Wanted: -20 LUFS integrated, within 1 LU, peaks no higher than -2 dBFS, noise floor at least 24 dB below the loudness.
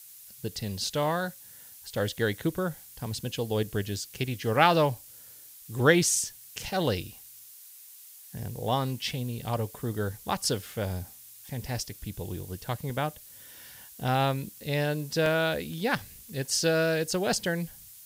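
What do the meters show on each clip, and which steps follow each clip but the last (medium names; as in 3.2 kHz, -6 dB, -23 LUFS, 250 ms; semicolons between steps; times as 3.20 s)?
dropouts 3; longest dropout 1.9 ms; noise floor -50 dBFS; noise floor target -54 dBFS; loudness -29.5 LUFS; peak level -6.0 dBFS; loudness target -20.0 LUFS
-> interpolate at 12.90/15.26/15.98 s, 1.9 ms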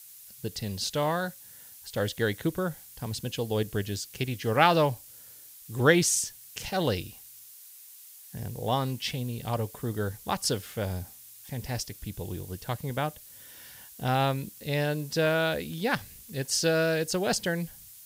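dropouts 0; noise floor -50 dBFS; noise floor target -54 dBFS
-> noise reduction 6 dB, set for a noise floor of -50 dBFS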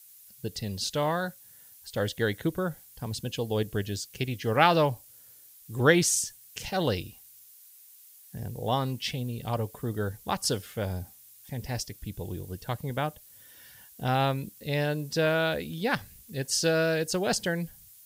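noise floor -54 dBFS; loudness -29.0 LUFS; peak level -6.0 dBFS; loudness target -20.0 LUFS
-> trim +9 dB; peak limiter -2 dBFS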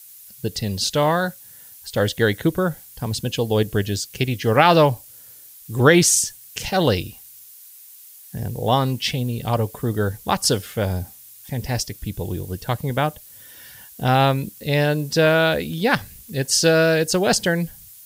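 loudness -20.5 LUFS; peak level -2.0 dBFS; noise floor -45 dBFS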